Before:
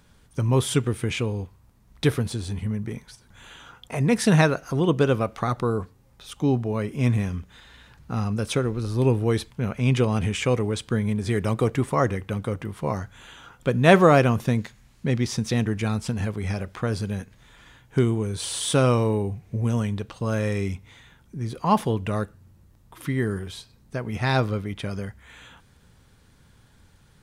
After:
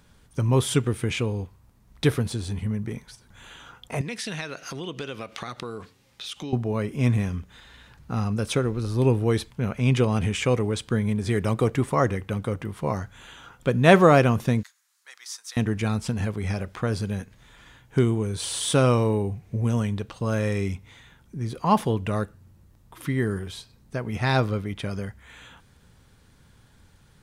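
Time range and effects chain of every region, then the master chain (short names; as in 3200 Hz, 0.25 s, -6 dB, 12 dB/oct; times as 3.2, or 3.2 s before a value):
4.01–6.53 weighting filter D + compressor 4:1, threshold -32 dBFS
14.63–15.57 HPF 1300 Hz 24 dB/oct + bell 2500 Hz -12.5 dB 1.5 oct
whole clip: dry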